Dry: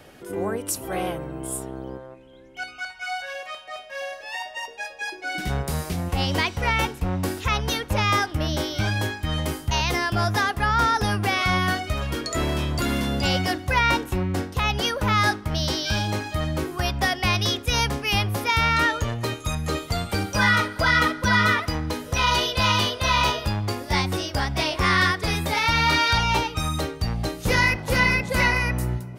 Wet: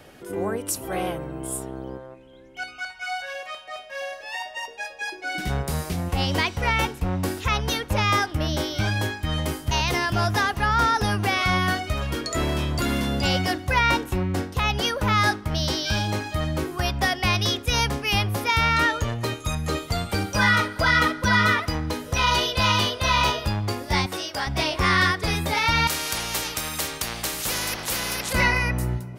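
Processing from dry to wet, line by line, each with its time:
9.44–9.84 echo throw 0.21 s, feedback 75%, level -13.5 dB
24.06–24.47 HPF 540 Hz 6 dB/oct
25.87–28.33 spectral compressor 4:1

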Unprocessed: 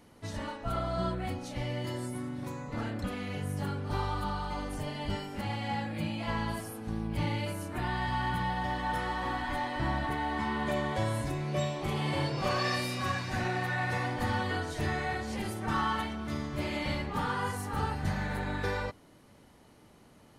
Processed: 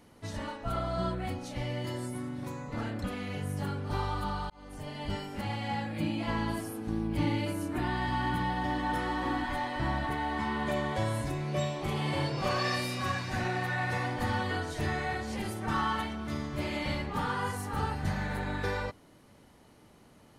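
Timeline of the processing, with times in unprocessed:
4.5–5.34 fade in equal-power
6–9.46 bell 300 Hz +10 dB 0.43 oct

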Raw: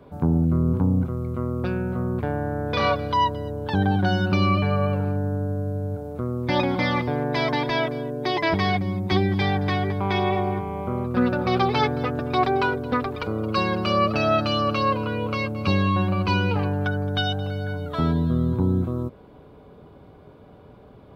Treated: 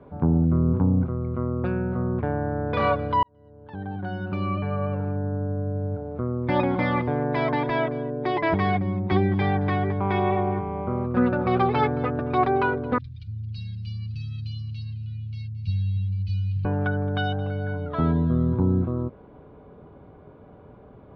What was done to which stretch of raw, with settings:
3.23–5.85 fade in
12.98–16.65 Chebyshev band-stop 120–4100 Hz, order 3
whole clip: LPF 2000 Hz 12 dB/oct

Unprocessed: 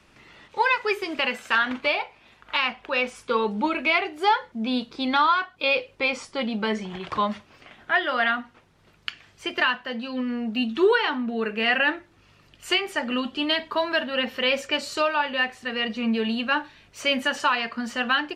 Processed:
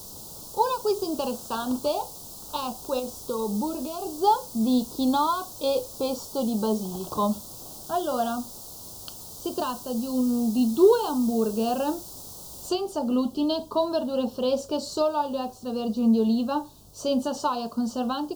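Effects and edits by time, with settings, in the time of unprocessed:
2.99–4.07 compressor 2.5:1, threshold -29 dBFS
6.14–7.23 low shelf 150 Hz -7.5 dB
12.69 noise floor step -41 dB -55 dB
whole clip: Chebyshev band-stop 880–4600 Hz, order 2; low shelf 310 Hz +8 dB

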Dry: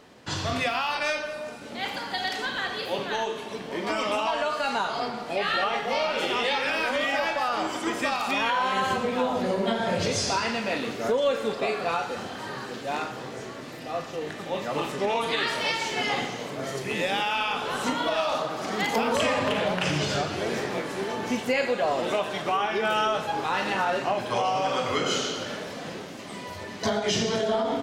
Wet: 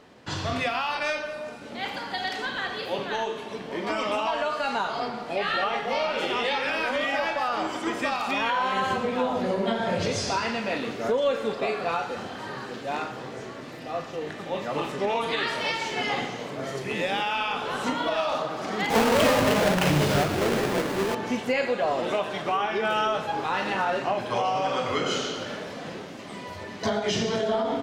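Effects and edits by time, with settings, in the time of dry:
18.9–21.15 half-waves squared off
whole clip: high shelf 5600 Hz -7 dB

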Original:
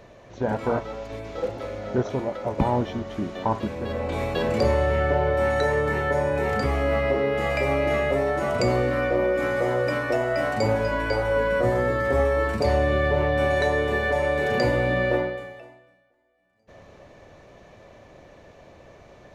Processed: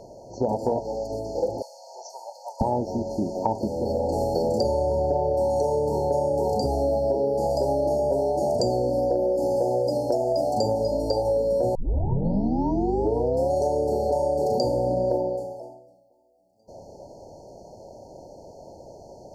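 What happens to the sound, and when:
1.62–2.61 Bessel high-pass 1300 Hz, order 6
11.75 tape start 1.77 s
whole clip: FFT band-reject 960–4200 Hz; low shelf 220 Hz -8 dB; compressor 6:1, threshold -27 dBFS; gain +7 dB

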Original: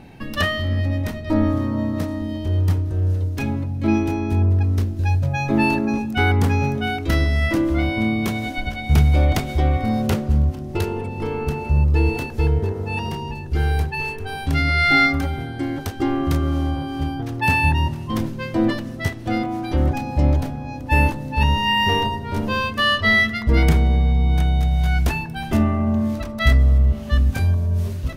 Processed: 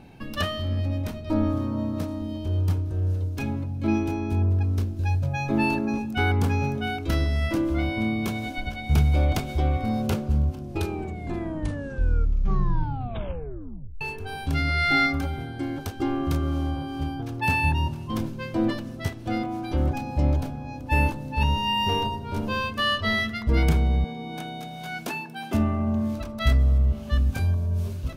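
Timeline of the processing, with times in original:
10.58 tape stop 3.43 s
24.04–25.54 HPF 200 Hz 24 dB/oct
whole clip: notch 1900 Hz, Q 8.1; gain -5 dB

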